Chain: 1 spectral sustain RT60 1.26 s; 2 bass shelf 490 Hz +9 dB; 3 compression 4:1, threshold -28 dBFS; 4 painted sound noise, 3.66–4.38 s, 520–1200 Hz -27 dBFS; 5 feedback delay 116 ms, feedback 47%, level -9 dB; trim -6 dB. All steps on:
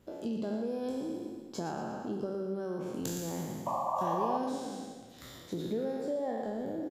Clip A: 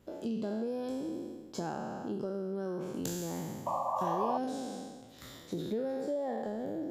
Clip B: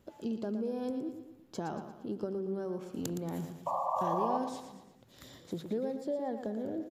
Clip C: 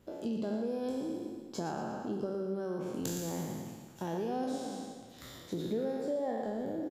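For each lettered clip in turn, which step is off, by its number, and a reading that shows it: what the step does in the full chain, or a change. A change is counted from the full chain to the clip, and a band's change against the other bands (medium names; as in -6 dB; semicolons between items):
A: 5, echo-to-direct -8.0 dB to none; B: 1, 8 kHz band -5.0 dB; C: 4, 1 kHz band -6.5 dB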